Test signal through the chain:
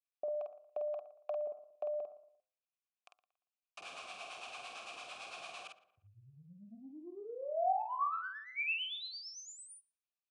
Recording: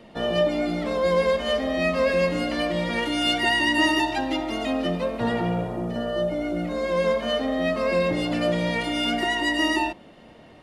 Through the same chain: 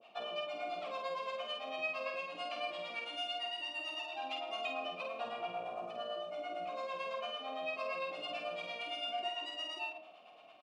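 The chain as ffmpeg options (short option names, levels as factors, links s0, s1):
-filter_complex "[0:a]highpass=82,tiltshelf=f=1500:g=-8.5,bandreject=f=105.2:t=h:w=4,bandreject=f=210.4:t=h:w=4,bandreject=f=315.6:t=h:w=4,bandreject=f=420.8:t=h:w=4,bandreject=f=526:t=h:w=4,bandreject=f=631.2:t=h:w=4,bandreject=f=736.4:t=h:w=4,bandreject=f=841.6:t=h:w=4,bandreject=f=946.8:t=h:w=4,bandreject=f=1052:t=h:w=4,bandreject=f=1157.2:t=h:w=4,bandreject=f=1262.4:t=h:w=4,bandreject=f=1367.6:t=h:w=4,acompressor=threshold=0.0282:ratio=3,acrossover=split=590[s0][s1];[s0]aeval=exprs='val(0)*(1-1/2+1/2*cos(2*PI*8.9*n/s))':c=same[s2];[s1]aeval=exprs='val(0)*(1-1/2-1/2*cos(2*PI*8.9*n/s))':c=same[s3];[s2][s3]amix=inputs=2:normalize=0,aeval=exprs='(tanh(11.2*val(0)+0.05)-tanh(0.05))/11.2':c=same,asplit=3[s4][s5][s6];[s4]bandpass=f=730:t=q:w=8,volume=1[s7];[s5]bandpass=f=1090:t=q:w=8,volume=0.501[s8];[s6]bandpass=f=2440:t=q:w=8,volume=0.355[s9];[s7][s8][s9]amix=inputs=3:normalize=0,asplit=2[s10][s11];[s11]adelay=49,volume=0.631[s12];[s10][s12]amix=inputs=2:normalize=0,asplit=2[s13][s14];[s14]adelay=116,lowpass=f=2300:p=1,volume=0.158,asplit=2[s15][s16];[s16]adelay=116,lowpass=f=2300:p=1,volume=0.39,asplit=2[s17][s18];[s18]adelay=116,lowpass=f=2300:p=1,volume=0.39[s19];[s13][s15][s17][s19]amix=inputs=4:normalize=0,aresample=22050,aresample=44100,volume=2.82"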